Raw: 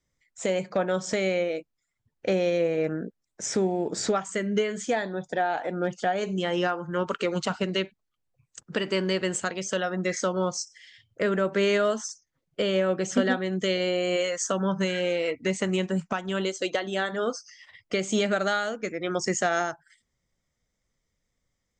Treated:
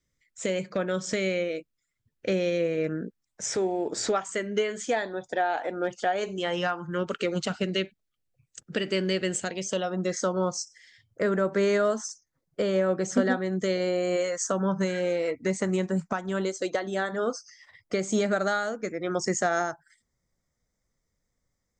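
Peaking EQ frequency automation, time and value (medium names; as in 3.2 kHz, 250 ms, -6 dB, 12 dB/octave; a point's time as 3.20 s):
peaking EQ -11 dB 0.62 oct
3.03 s 800 Hz
3.67 s 170 Hz
6.37 s 170 Hz
7.05 s 990 Hz
9.29 s 990 Hz
10.37 s 2.9 kHz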